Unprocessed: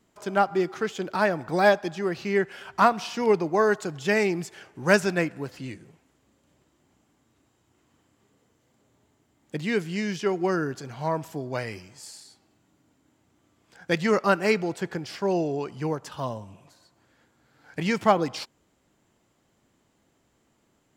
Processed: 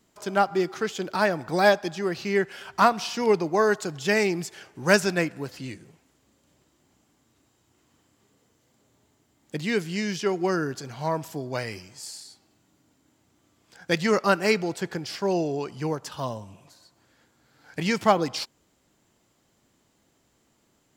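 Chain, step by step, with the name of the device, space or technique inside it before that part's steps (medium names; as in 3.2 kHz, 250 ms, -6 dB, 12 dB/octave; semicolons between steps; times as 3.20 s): presence and air boost (peaking EQ 4.8 kHz +4 dB 1.1 oct; treble shelf 9.4 kHz +7 dB)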